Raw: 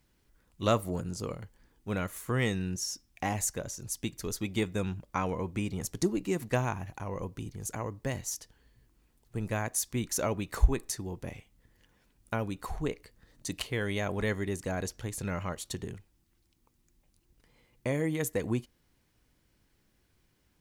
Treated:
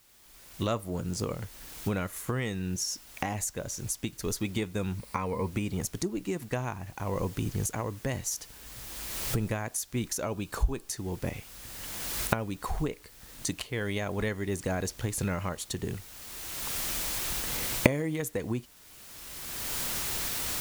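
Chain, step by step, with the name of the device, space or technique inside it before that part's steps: cheap recorder with automatic gain (white noise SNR 24 dB; recorder AGC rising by 23 dB/s); 4.98–5.48 ripple EQ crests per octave 0.92, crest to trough 7 dB; 10.26–10.87 notch 2000 Hz, Q 5.2; gain -4.5 dB

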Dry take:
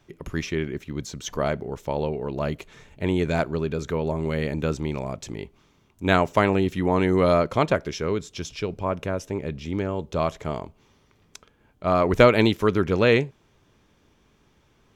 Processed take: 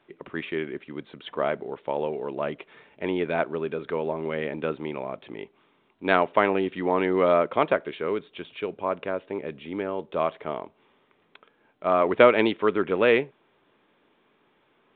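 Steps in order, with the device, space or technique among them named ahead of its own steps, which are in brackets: telephone (BPF 300–3300 Hz; µ-law 64 kbps 8000 Hz)

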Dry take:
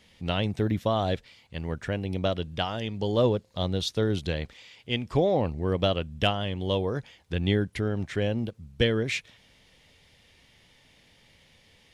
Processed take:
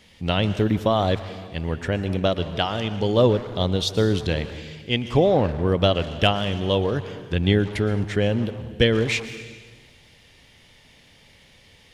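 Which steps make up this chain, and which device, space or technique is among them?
saturated reverb return (on a send at -8 dB: reverb RT60 1.4 s, pre-delay 0.109 s + soft clip -28 dBFS, distortion -8 dB); on the sum: gain +5.5 dB

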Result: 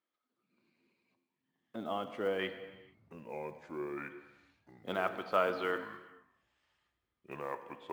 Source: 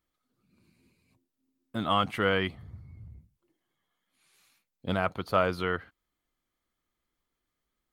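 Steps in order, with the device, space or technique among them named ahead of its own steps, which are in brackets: 1.76–2.39 band shelf 2000 Hz -11 dB 2.5 oct; echoes that change speed 0.781 s, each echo -5 st, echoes 2, each echo -6 dB; early digital voice recorder (BPF 300–3700 Hz; block floating point 7-bit); non-linear reverb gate 0.49 s falling, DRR 9 dB; gain -4.5 dB

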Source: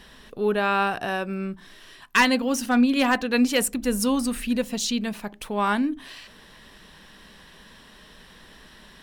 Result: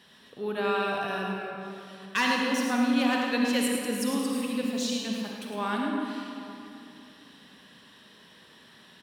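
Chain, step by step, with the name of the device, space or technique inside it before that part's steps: PA in a hall (HPF 100 Hz 24 dB/oct; bell 3600 Hz +3.5 dB 0.77 oct; echo 0.107 s -8 dB; reverb RT60 2.8 s, pre-delay 39 ms, DRR -0.5 dB); gain -9 dB

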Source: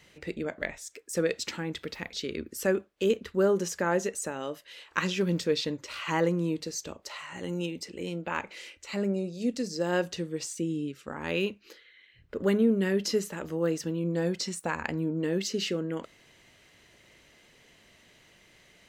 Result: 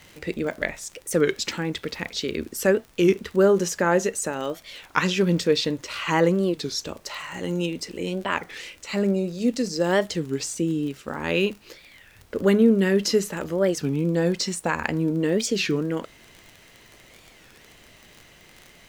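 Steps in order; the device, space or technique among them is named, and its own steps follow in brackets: warped LP (record warp 33 1/3 rpm, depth 250 cents; crackle 38/s -39 dBFS; pink noise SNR 33 dB); gain +6.5 dB

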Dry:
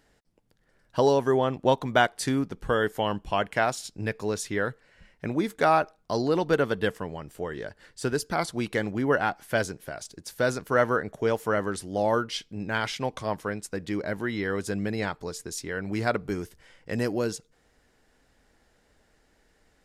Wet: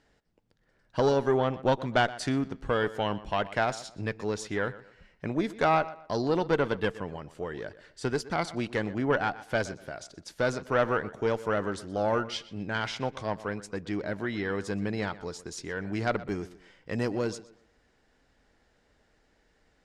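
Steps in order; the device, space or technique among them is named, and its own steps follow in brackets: rockabilly slapback (tube stage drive 13 dB, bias 0.5; tape echo 0.123 s, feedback 32%, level -16 dB, low-pass 4000 Hz); LPF 6400 Hz 12 dB/oct

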